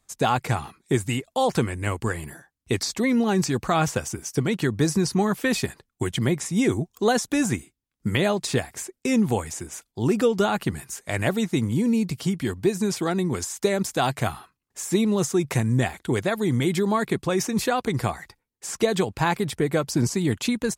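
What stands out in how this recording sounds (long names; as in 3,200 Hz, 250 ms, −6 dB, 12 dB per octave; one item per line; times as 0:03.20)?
background noise floor −80 dBFS
spectral slope −5.0 dB per octave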